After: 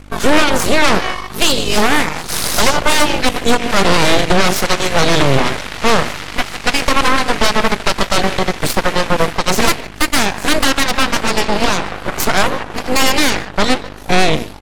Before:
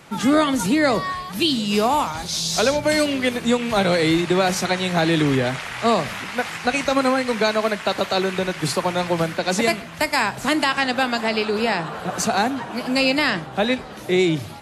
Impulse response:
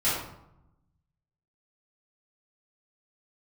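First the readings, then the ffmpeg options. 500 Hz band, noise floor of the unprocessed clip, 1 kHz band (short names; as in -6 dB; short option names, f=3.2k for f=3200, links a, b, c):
+3.5 dB, -35 dBFS, +6.5 dB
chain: -filter_complex "[0:a]asplit=2[a][b];[b]adelay=150,highpass=300,lowpass=3.4k,asoftclip=type=hard:threshold=-15.5dB,volume=-11dB[c];[a][c]amix=inputs=2:normalize=0,aeval=exprs='val(0)+0.02*(sin(2*PI*50*n/s)+sin(2*PI*2*50*n/s)/2+sin(2*PI*3*50*n/s)/3+sin(2*PI*4*50*n/s)/4+sin(2*PI*5*50*n/s)/5)':c=same,aeval=exprs='0.501*(cos(1*acos(clip(val(0)/0.501,-1,1)))-cos(1*PI/2))+0.1*(cos(3*acos(clip(val(0)/0.501,-1,1)))-cos(3*PI/2))+0.224*(cos(6*acos(clip(val(0)/0.501,-1,1)))-cos(6*PI/2))':c=same,volume=3dB"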